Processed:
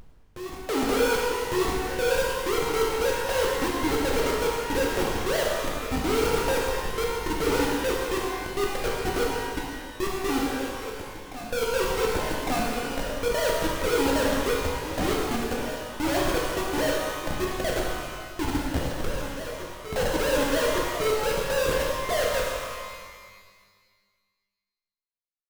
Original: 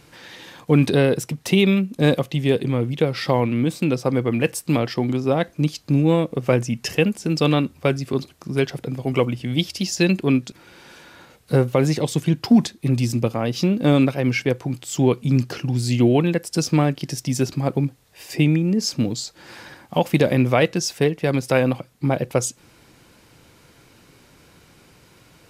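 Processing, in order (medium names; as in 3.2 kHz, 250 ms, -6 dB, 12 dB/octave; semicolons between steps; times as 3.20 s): formants replaced by sine waves; tilt EQ -2 dB/octave; in parallel at -2 dB: compression 6:1, threshold -22 dBFS, peak gain reduction 22 dB; on the sum: saturation -1.5 dBFS, distortion -15 dB; bit crusher 7-bit; ladder band-pass 630 Hz, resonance 75%; Schmitt trigger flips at -32 dBFS; on a send: reverse echo 1156 ms -11 dB; on the sum: pitch-shifted reverb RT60 1.7 s, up +12 st, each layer -8 dB, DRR -3.5 dB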